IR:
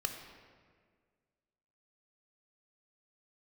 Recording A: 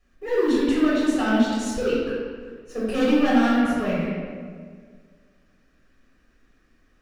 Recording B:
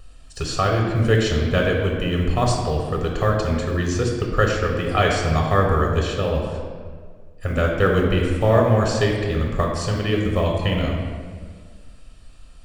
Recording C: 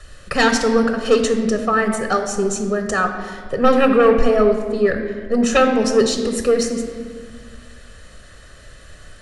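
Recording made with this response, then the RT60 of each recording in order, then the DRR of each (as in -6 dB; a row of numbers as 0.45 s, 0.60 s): C; 1.8 s, 1.8 s, 1.8 s; -8.0 dB, 0.0 dB, 5.0 dB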